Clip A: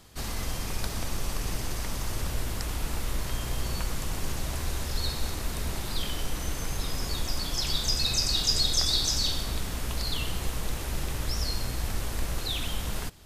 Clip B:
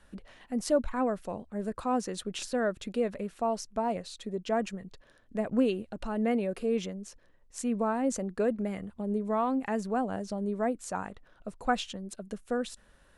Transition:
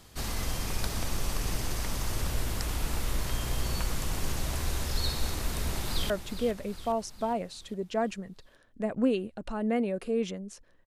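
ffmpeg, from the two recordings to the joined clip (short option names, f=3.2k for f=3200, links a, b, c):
-filter_complex "[0:a]apad=whole_dur=10.86,atrim=end=10.86,atrim=end=6.102[a];[1:a]atrim=start=2.648:end=7.41[b];[a][b]acrossfade=d=0.004:c1=hsin:c2=hsin,asplit=2[c][d];[d]afade=t=in:st=5.46:d=0.01,afade=t=out:st=6.1:d=0.01,aecho=0:1:410|820|1230|1640|2050|2460:0.298538|0.164196|0.0903078|0.0496693|0.0273181|0.015025[e];[c][e]amix=inputs=2:normalize=0"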